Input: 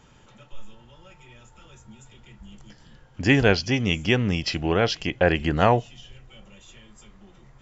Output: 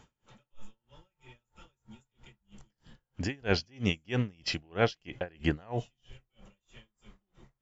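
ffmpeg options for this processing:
ffmpeg -i in.wav -af "aeval=exprs='val(0)*pow(10,-34*(0.5-0.5*cos(2*PI*3.1*n/s))/20)':channel_layout=same,volume=-2.5dB" out.wav

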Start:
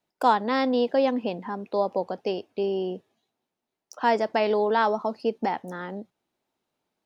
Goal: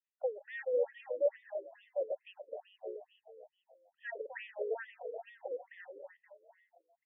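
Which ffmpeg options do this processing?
ffmpeg -i in.wav -filter_complex "[0:a]asplit=3[link_01][link_02][link_03];[link_01]bandpass=frequency=530:width_type=q:width=8,volume=0dB[link_04];[link_02]bandpass=frequency=1840:width_type=q:width=8,volume=-6dB[link_05];[link_03]bandpass=frequency=2480:width_type=q:width=8,volume=-9dB[link_06];[link_04][link_05][link_06]amix=inputs=3:normalize=0,asplit=7[link_07][link_08][link_09][link_10][link_11][link_12][link_13];[link_08]adelay=262,afreqshift=36,volume=-5dB[link_14];[link_09]adelay=524,afreqshift=72,volume=-11.6dB[link_15];[link_10]adelay=786,afreqshift=108,volume=-18.1dB[link_16];[link_11]adelay=1048,afreqshift=144,volume=-24.7dB[link_17];[link_12]adelay=1310,afreqshift=180,volume=-31.2dB[link_18];[link_13]adelay=1572,afreqshift=216,volume=-37.8dB[link_19];[link_07][link_14][link_15][link_16][link_17][link_18][link_19]amix=inputs=7:normalize=0,afftfilt=real='re*between(b*sr/1024,380*pow(2600/380,0.5+0.5*sin(2*PI*2.3*pts/sr))/1.41,380*pow(2600/380,0.5+0.5*sin(2*PI*2.3*pts/sr))*1.41)':imag='im*between(b*sr/1024,380*pow(2600/380,0.5+0.5*sin(2*PI*2.3*pts/sr))/1.41,380*pow(2600/380,0.5+0.5*sin(2*PI*2.3*pts/sr))*1.41)':win_size=1024:overlap=0.75,volume=-1.5dB" out.wav

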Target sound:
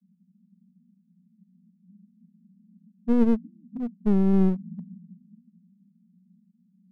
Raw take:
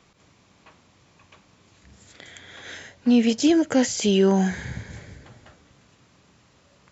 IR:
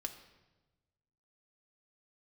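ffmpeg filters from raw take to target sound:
-af "acontrast=39,asuperpass=centerf=200:order=12:qfactor=2.8,aeval=exprs='clip(val(0),-1,0.0355)':channel_layout=same"

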